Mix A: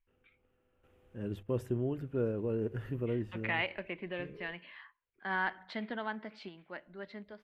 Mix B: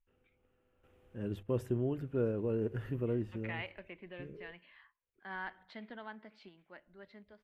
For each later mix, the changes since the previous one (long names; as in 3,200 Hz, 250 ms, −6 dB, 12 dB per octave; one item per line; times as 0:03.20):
second voice −9.0 dB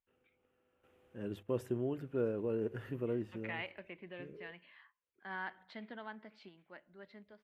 first voice: add high-pass filter 230 Hz 6 dB per octave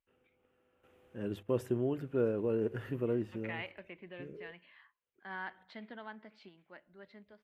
first voice +3.5 dB